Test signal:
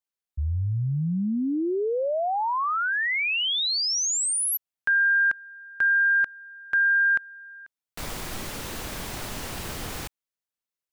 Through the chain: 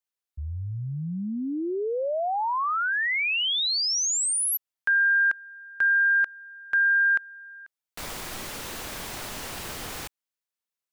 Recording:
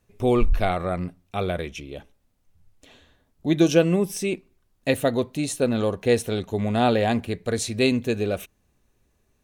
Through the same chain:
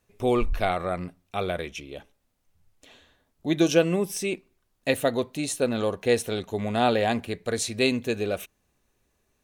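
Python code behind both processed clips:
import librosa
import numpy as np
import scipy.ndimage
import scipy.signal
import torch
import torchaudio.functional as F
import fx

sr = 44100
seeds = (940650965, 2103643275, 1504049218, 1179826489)

y = fx.low_shelf(x, sr, hz=300.0, db=-7.0)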